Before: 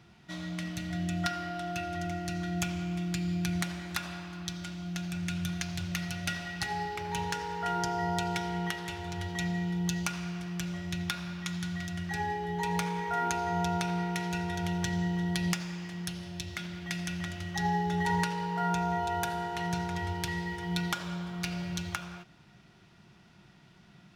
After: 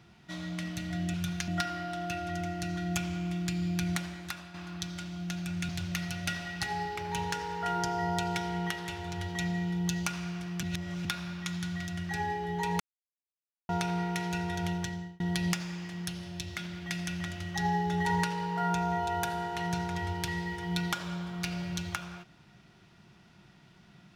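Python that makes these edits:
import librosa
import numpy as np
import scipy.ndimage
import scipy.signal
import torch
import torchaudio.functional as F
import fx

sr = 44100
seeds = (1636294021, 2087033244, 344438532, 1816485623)

y = fx.edit(x, sr, fx.fade_out_to(start_s=3.6, length_s=0.6, floor_db=-9.5),
    fx.move(start_s=5.35, length_s=0.34, to_s=1.14),
    fx.reverse_span(start_s=10.63, length_s=0.42),
    fx.silence(start_s=12.8, length_s=0.89),
    fx.fade_out_span(start_s=14.68, length_s=0.52), tone=tone)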